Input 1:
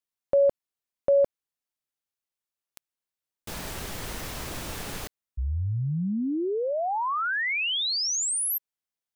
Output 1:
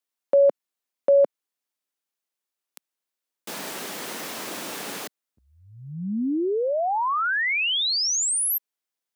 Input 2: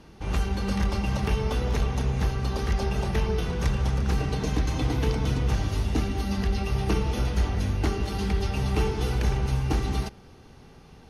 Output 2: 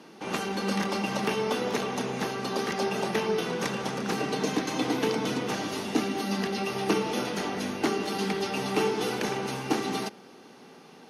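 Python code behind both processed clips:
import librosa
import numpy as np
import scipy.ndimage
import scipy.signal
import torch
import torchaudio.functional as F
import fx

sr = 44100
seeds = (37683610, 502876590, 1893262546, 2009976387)

y = scipy.signal.sosfilt(scipy.signal.butter(4, 210.0, 'highpass', fs=sr, output='sos'), x)
y = F.gain(torch.from_numpy(y), 3.5).numpy()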